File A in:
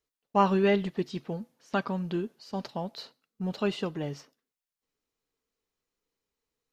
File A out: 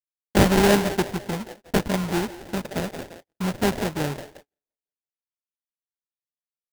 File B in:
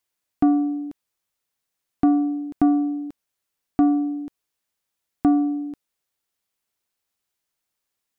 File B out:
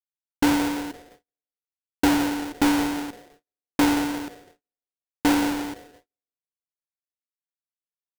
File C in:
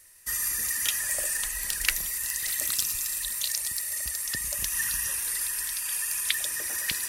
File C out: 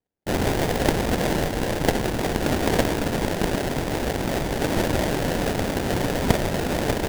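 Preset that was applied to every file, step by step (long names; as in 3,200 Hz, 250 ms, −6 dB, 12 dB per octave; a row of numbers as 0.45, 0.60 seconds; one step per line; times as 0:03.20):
delay with a band-pass on its return 171 ms, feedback 44%, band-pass 940 Hz, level −7 dB
noise that follows the level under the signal 15 dB
sample-rate reduction 1,200 Hz, jitter 20%
noise gate −49 dBFS, range −40 dB
loudness normalisation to −24 LKFS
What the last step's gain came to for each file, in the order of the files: +6.0, −2.5, +6.5 decibels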